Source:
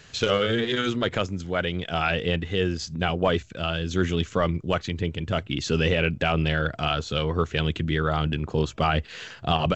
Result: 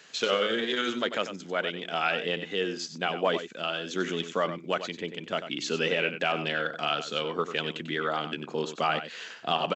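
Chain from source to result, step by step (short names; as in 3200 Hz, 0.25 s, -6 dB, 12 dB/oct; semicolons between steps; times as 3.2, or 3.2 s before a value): HPF 190 Hz 24 dB/oct; low shelf 260 Hz -8 dB; echo 94 ms -10.5 dB; gain -2 dB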